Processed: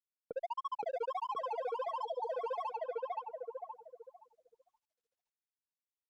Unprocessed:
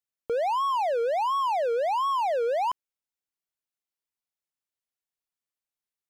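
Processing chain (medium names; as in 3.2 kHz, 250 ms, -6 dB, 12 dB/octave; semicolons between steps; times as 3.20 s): granulator 39 ms, grains 14 per s, spray 14 ms, pitch spread up and down by 0 st; feedback delay 521 ms, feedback 38%, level -4.5 dB; spectral selection erased 2.01–2.30 s, 1–3.2 kHz; high-pass 140 Hz 24 dB/octave; treble shelf 6 kHz -10.5 dB; expander -55 dBFS; level-controlled noise filter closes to 380 Hz, open at -27 dBFS; compression 1.5:1, threshold -42 dBFS, peak gain reduction 6 dB; peak limiter -32.5 dBFS, peak gain reduction 6.5 dB; trim +2 dB; Opus 48 kbps 48 kHz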